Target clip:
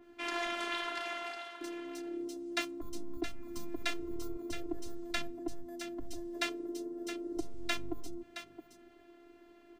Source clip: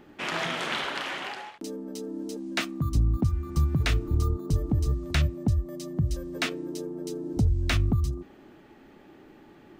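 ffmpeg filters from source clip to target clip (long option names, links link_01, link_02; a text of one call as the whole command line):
ffmpeg -i in.wav -filter_complex "[0:a]afftfilt=real='hypot(re,im)*cos(PI*b)':imag='0':win_size=512:overlap=0.75,bandreject=frequency=60:width_type=h:width=6,bandreject=frequency=120:width_type=h:width=6,bandreject=frequency=180:width_type=h:width=6,acrossover=split=150[link_01][link_02];[link_01]asoftclip=type=tanh:threshold=-32dB[link_03];[link_02]aecho=1:1:669:0.299[link_04];[link_03][link_04]amix=inputs=2:normalize=0,adynamicequalizer=threshold=0.00398:dfrequency=2300:dqfactor=0.7:tfrequency=2300:tqfactor=0.7:attack=5:release=100:ratio=0.375:range=1.5:mode=cutabove:tftype=highshelf,volume=-2.5dB" out.wav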